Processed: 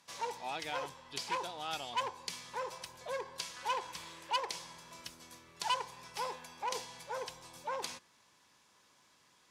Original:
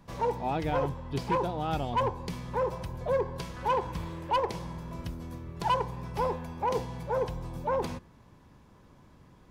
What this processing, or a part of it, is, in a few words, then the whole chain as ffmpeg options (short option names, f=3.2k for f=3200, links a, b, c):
piezo pickup straight into a mixer: -af "lowpass=7.6k,aderivative,volume=10dB"